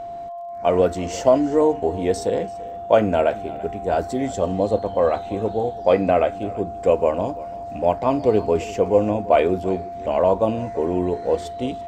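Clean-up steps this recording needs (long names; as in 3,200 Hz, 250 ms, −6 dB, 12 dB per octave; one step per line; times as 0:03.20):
click removal
notch filter 690 Hz, Q 30
echo removal 337 ms −19 dB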